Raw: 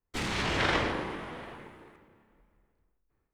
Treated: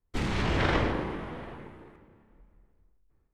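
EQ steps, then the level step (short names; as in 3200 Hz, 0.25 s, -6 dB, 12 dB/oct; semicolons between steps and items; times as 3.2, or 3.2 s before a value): tilt -2 dB/oct; 0.0 dB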